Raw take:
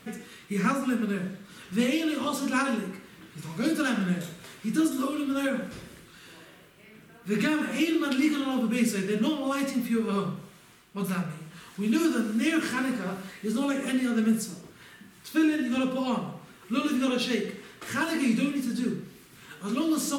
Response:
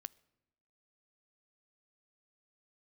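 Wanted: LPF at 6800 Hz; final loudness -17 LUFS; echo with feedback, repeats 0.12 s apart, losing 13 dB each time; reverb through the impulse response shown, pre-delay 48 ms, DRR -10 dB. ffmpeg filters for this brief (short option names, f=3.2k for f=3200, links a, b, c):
-filter_complex "[0:a]lowpass=6.8k,aecho=1:1:120|240|360:0.224|0.0493|0.0108,asplit=2[a][b];[1:a]atrim=start_sample=2205,adelay=48[c];[b][c]afir=irnorm=-1:irlink=0,volume=15dB[d];[a][d]amix=inputs=2:normalize=0,volume=1dB"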